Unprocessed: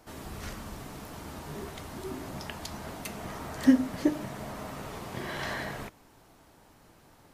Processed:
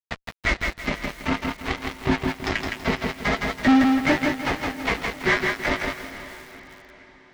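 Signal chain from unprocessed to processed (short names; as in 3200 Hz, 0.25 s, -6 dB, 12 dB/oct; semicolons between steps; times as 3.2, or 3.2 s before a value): bell 2100 Hz +14 dB 0.48 oct; in parallel at -1 dB: compressor 5:1, threshold -40 dBFS, peak gain reduction 22.5 dB; on the sum: harmonic tremolo 9 Hz, depth 70%, crossover 640 Hz; grains 0.201 s, grains 2.5/s, pitch spread up and down by 0 st; resonator 53 Hz, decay 0.32 s, harmonics odd, mix 80%; flange 0.48 Hz, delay 1 ms, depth 4.5 ms, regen -9%; fuzz box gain 50 dB, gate -53 dBFS; air absorption 150 m; on a send: diffused feedback echo 0.501 s, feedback 50%, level -13.5 dB; on the sum: lo-fi delay 0.164 s, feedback 35%, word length 7-bit, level -3.5 dB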